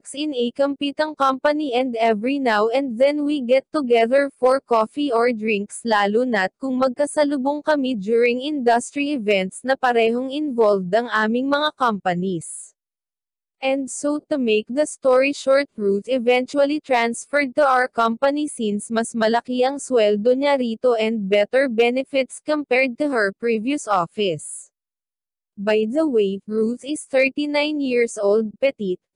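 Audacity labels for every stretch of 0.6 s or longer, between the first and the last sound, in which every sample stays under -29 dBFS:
12.640000	13.630000	silence
24.610000	25.590000	silence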